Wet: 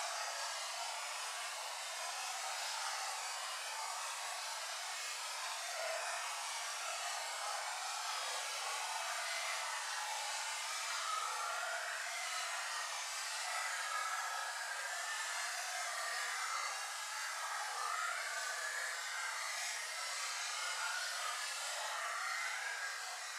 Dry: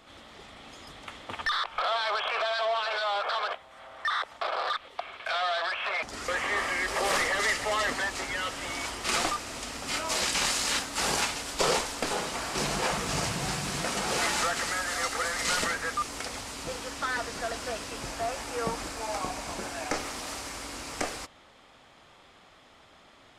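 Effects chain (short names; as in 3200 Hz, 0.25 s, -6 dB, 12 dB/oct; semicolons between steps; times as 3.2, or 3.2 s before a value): steep high-pass 630 Hz 48 dB/oct; limiter -22 dBFS, peak gain reduction 8.5 dB; split-band echo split 1100 Hz, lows 0.721 s, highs 0.315 s, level -6.5 dB; ring modulator 22 Hz; Paulstretch 8.9×, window 0.05 s, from 13.19; gain -7 dB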